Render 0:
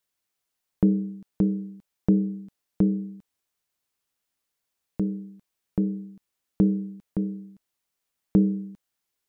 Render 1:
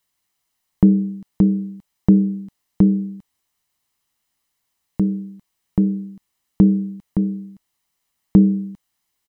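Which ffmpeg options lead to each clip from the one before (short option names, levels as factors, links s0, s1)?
-af "aecho=1:1:1:0.38,volume=2.11"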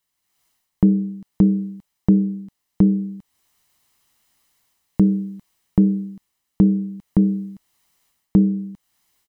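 -af "dynaudnorm=f=230:g=3:m=4.22,volume=0.668"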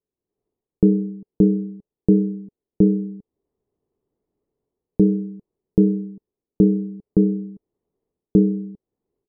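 -af "lowpass=f=420:t=q:w=4.9,volume=0.668"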